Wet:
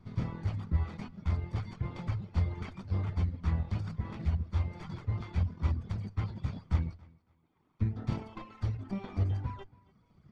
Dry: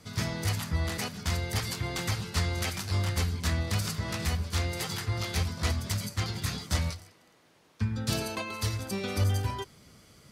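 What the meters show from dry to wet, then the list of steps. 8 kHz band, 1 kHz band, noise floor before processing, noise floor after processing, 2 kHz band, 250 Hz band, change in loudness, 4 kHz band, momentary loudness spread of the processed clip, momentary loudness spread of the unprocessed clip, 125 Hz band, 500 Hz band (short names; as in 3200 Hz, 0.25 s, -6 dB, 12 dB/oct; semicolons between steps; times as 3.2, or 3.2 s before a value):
under -25 dB, -8.5 dB, -61 dBFS, -70 dBFS, -15.0 dB, -3.5 dB, -3.5 dB, -21.0 dB, 6 LU, 4 LU, -1.5 dB, -10.0 dB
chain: minimum comb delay 0.88 ms; reverb removal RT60 1.1 s; low shelf 300 Hz +6 dB; notches 50/100 Hz; in parallel at -6 dB: decimation with a swept rate 15×, swing 100% 2.2 Hz; on the sum: tape spacing loss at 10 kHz 31 dB; on a send: tape echo 0.281 s, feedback 30%, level -21.5 dB, low-pass 5100 Hz; on the sum: gain -6.5 dB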